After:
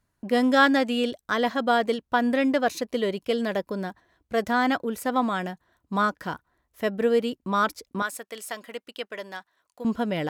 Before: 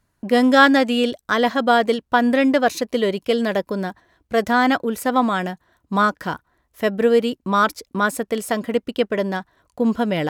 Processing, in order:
0:08.02–0:09.85: high-pass filter 1,400 Hz 6 dB per octave
level −6 dB

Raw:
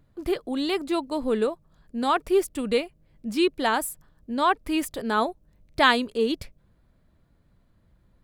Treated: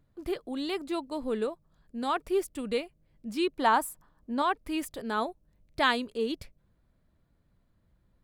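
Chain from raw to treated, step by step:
0:03.56–0:04.42: graphic EQ with 10 bands 125 Hz −3 dB, 250 Hz +4 dB, 1,000 Hz +10 dB
level −6.5 dB

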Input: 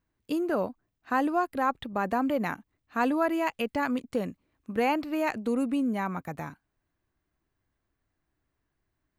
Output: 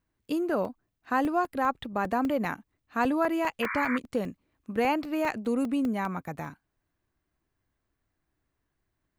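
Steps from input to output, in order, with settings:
sound drawn into the spectrogram noise, 0:03.62–0:03.98, 940–2,400 Hz −33 dBFS
regular buffer underruns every 0.20 s, samples 64, zero, from 0:00.65

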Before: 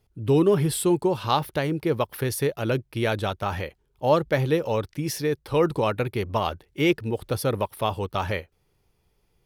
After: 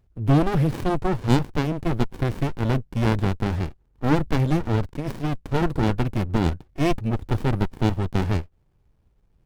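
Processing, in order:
low-shelf EQ 89 Hz +6 dB
windowed peak hold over 65 samples
level +3 dB

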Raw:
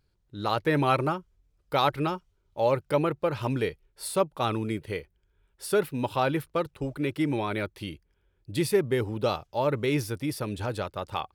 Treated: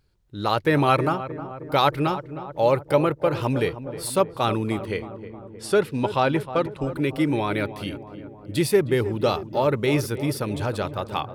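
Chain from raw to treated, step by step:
0:04.86–0:06.86: low-pass filter 8,600 Hz 12 dB per octave
feedback echo with a low-pass in the loop 312 ms, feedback 68%, low-pass 1,300 Hz, level −12 dB
level +4.5 dB

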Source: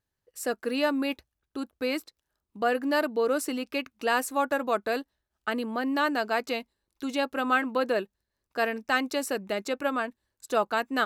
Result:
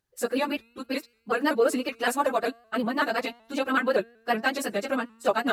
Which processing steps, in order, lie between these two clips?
time stretch by phase vocoder 0.5×
tuned comb filter 230 Hz, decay 1 s, mix 30%
pitch modulation by a square or saw wave saw up 5.3 Hz, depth 100 cents
level +8.5 dB

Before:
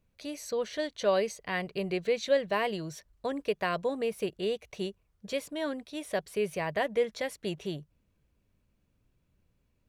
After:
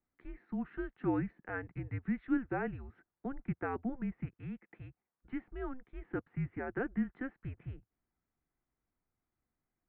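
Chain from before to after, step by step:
0:04.25–0:05.26: parametric band 300 Hz −10.5 dB 1.1 octaves
single-sideband voice off tune −260 Hz 250–2,200 Hz
level −6 dB

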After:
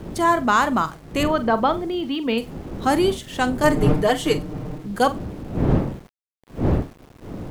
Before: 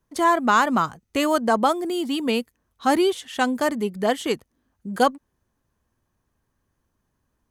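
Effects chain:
wind on the microphone 270 Hz −28 dBFS
0:01.23–0:02.38: low-pass filter 3,900 Hz 24 dB per octave
0:03.63–0:04.87: comb filter 6.6 ms, depth 97%
flutter between parallel walls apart 7.6 metres, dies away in 0.21 s
centre clipping without the shift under −43 dBFS

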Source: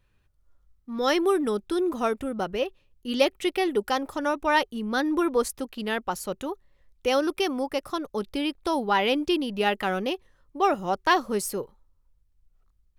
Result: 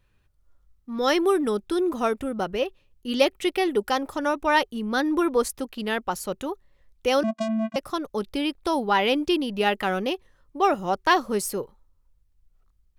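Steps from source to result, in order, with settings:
0:07.23–0:07.76: channel vocoder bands 4, square 221 Hz
level +1.5 dB

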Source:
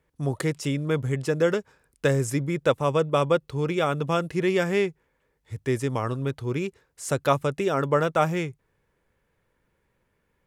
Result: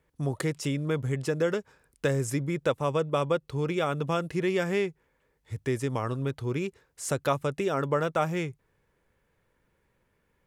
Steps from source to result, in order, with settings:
downward compressor 1.5 to 1, threshold −30 dBFS, peak gain reduction 5.5 dB

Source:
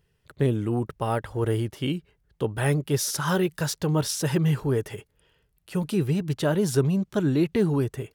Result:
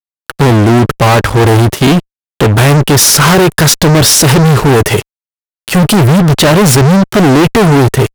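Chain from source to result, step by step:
fuzz pedal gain 37 dB, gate −46 dBFS
level +8.5 dB

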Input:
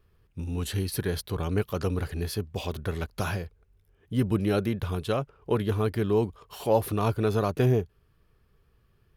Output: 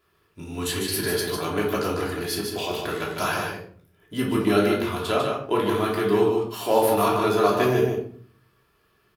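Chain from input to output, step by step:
high-pass filter 650 Hz 6 dB per octave
on a send: single-tap delay 149 ms −5 dB
on the sum: rectangular room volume 550 cubic metres, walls furnished, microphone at 3 metres
level +4.5 dB

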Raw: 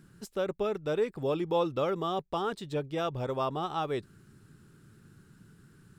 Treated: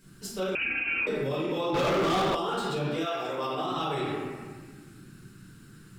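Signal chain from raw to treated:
high-shelf EQ 2,300 Hz +10 dB
convolution reverb RT60 1.6 s, pre-delay 4 ms, DRR −10 dB
brickwall limiter −14.5 dBFS, peak gain reduction 9.5 dB
0:00.55–0:01.07: voice inversion scrambler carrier 2,900 Hz
0:01.74–0:02.35: leveller curve on the samples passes 3
0:03.05–0:03.70: high-pass filter 480 Hz → 190 Hz 12 dB per octave
level −7 dB

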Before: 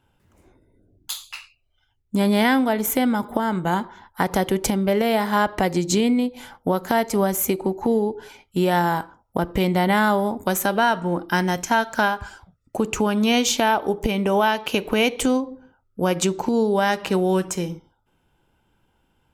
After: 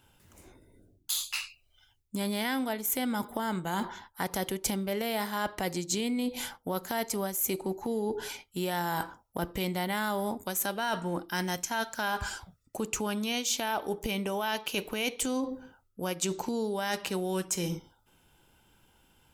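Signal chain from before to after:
high-shelf EQ 3,000 Hz +12 dB
reversed playback
downward compressor 5 to 1, threshold −30 dBFS, peak gain reduction 18.5 dB
reversed playback

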